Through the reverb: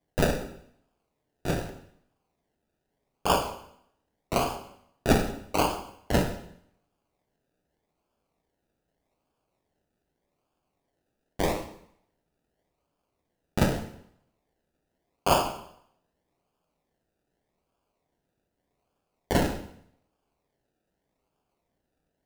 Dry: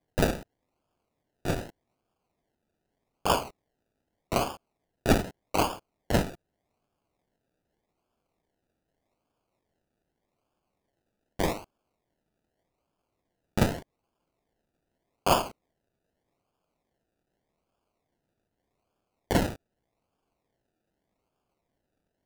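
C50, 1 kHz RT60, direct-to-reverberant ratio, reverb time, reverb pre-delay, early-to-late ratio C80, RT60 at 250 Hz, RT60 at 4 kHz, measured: 9.5 dB, 0.70 s, 5.0 dB, 0.70 s, 5 ms, 12.0 dB, 0.75 s, 0.65 s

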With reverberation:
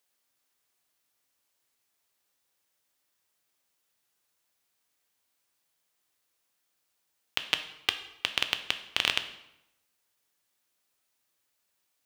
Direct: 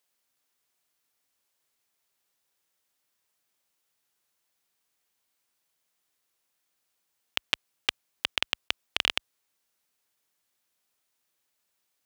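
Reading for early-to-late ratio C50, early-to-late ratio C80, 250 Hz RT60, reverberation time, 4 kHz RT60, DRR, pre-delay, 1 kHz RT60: 11.5 dB, 14.5 dB, 0.95 s, 0.85 s, 0.70 s, 8.0 dB, 3 ms, 0.85 s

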